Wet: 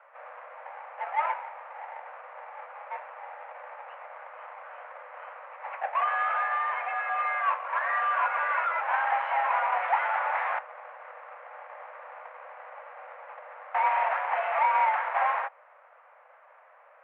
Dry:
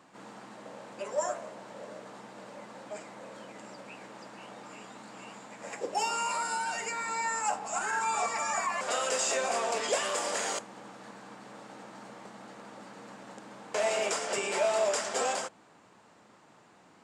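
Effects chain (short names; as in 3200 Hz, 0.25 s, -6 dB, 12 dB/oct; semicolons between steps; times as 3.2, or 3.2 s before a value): half-waves squared off; added harmonics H 8 -14 dB, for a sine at -16 dBFS; mistuned SSB +290 Hz 260–2000 Hz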